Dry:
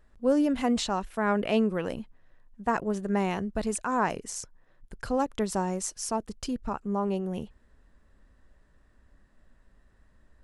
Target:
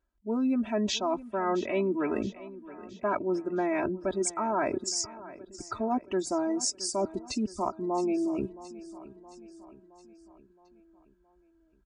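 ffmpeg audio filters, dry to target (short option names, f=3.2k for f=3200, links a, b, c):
-filter_complex "[0:a]afftdn=nr=24:nf=-41,highpass=140,aecho=1:1:2.7:0.99,areverse,acompressor=threshold=-36dB:ratio=4,areverse,asetrate=38808,aresample=44100,asplit=2[a][b];[b]aecho=0:1:669|1338|2007|2676|3345:0.141|0.0777|0.0427|0.0235|0.0129[c];[a][c]amix=inputs=2:normalize=0,volume=8dB"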